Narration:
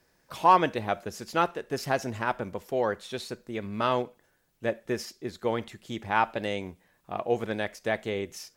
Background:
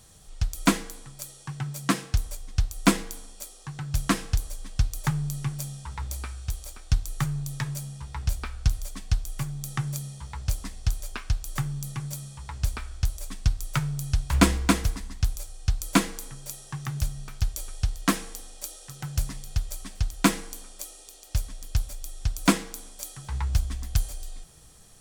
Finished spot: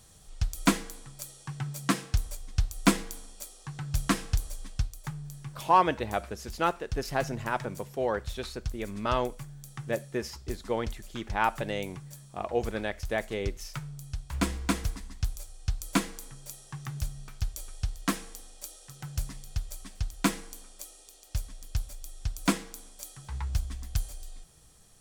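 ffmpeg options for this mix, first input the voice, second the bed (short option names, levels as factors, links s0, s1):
-filter_complex "[0:a]adelay=5250,volume=0.794[s0];[1:a]volume=1.5,afade=t=out:st=4.65:d=0.31:silence=0.354813,afade=t=in:st=14.32:d=0.51:silence=0.501187[s1];[s0][s1]amix=inputs=2:normalize=0"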